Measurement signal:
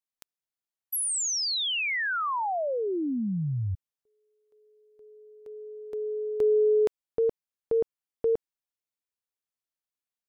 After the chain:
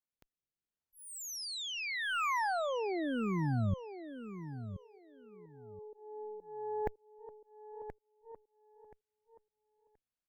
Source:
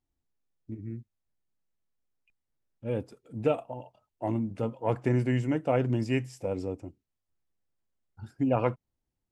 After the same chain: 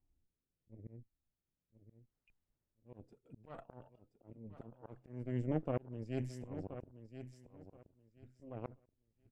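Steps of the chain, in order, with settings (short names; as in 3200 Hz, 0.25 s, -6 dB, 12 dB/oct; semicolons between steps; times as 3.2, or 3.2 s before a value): tilt -2 dB/oct; reverse; compressor 5:1, threshold -31 dBFS; reverse; rotary speaker horn 0.75 Hz; added harmonics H 3 -31 dB, 4 -8 dB, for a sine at -20 dBFS; auto swell 0.683 s; on a send: feedback echo 1.027 s, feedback 20%, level -11 dB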